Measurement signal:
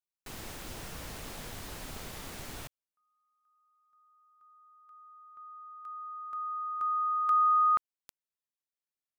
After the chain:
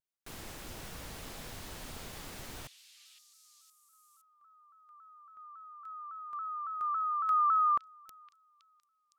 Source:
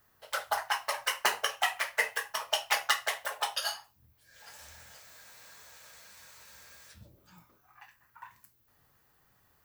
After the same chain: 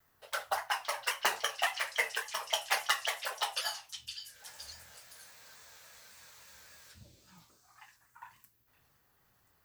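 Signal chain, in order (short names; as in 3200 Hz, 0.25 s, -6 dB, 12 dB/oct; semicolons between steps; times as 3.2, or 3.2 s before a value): delay with a stepping band-pass 0.514 s, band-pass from 3700 Hz, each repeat 0.7 oct, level -6 dB; shaped vibrato saw down 3.6 Hz, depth 100 cents; gain -2.5 dB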